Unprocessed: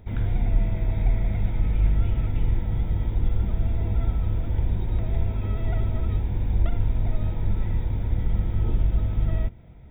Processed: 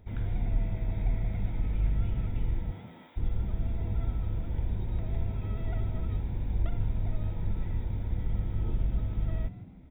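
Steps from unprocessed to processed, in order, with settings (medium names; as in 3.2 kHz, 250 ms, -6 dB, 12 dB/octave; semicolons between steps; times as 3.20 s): 2.71–3.16 s: high-pass 300 Hz -> 1 kHz 12 dB/octave; frequency-shifting echo 158 ms, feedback 37%, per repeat +74 Hz, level -16 dB; trim -7 dB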